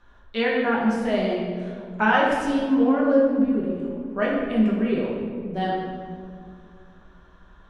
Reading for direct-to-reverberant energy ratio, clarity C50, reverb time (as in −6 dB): −5.5 dB, 0.0 dB, 2.3 s